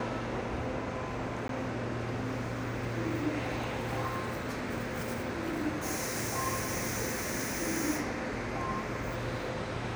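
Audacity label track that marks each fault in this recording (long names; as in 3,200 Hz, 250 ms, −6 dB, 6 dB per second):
1.480000	1.490000	drop-out 12 ms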